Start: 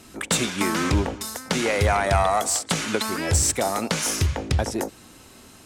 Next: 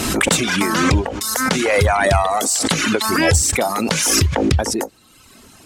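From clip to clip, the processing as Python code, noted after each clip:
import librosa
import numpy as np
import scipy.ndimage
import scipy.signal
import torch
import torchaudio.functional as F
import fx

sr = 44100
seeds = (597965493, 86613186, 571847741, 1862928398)

y = fx.dereverb_blind(x, sr, rt60_s=1.0)
y = fx.pre_swell(y, sr, db_per_s=27.0)
y = y * 10.0 ** (5.0 / 20.0)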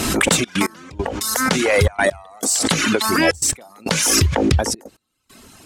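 y = fx.step_gate(x, sr, bpm=136, pattern='xxxx.x...xxxx', floor_db=-24.0, edge_ms=4.5)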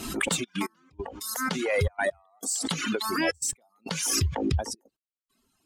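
y = fx.bin_expand(x, sr, power=1.5)
y = y * 10.0 ** (-8.0 / 20.0)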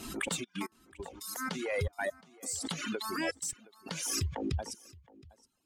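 y = x + 10.0 ** (-22.5 / 20.0) * np.pad(x, (int(719 * sr / 1000.0), 0))[:len(x)]
y = y * 10.0 ** (-7.5 / 20.0)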